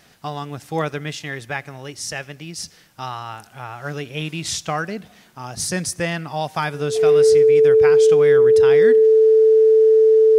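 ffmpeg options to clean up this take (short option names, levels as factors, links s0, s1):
-af "bandreject=f=440:w=30"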